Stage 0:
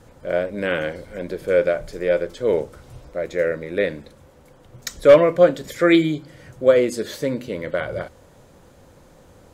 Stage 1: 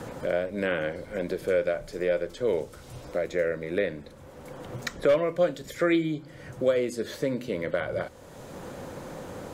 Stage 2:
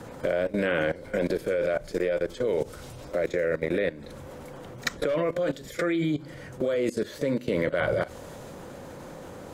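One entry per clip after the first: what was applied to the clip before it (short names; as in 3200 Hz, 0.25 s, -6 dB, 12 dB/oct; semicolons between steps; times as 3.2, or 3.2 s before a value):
three-band squash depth 70%; gain -6 dB
pre-echo 36 ms -14 dB; level quantiser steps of 17 dB; gain +9 dB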